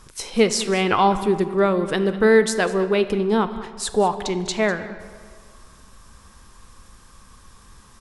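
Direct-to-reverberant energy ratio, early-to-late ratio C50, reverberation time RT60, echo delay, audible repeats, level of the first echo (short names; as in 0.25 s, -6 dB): 10.0 dB, 11.5 dB, 2.1 s, 0.199 s, 1, -17.0 dB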